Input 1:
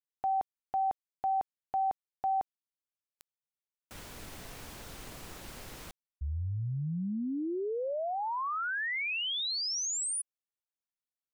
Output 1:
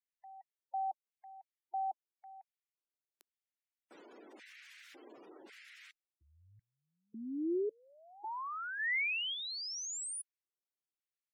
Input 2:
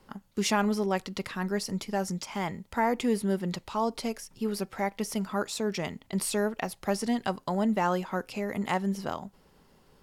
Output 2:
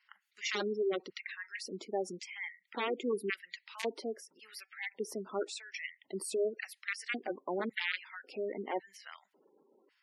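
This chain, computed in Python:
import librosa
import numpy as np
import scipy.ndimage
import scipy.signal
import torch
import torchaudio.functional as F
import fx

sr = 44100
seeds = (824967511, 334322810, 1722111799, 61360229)

y = (np.mod(10.0 ** (18.5 / 20.0) * x + 1.0, 2.0) - 1.0) / 10.0 ** (18.5 / 20.0)
y = fx.filter_lfo_highpass(y, sr, shape='square', hz=0.91, low_hz=350.0, high_hz=2000.0, q=2.8)
y = fx.spec_gate(y, sr, threshold_db=-15, keep='strong')
y = F.gain(torch.from_numpy(y), -8.0).numpy()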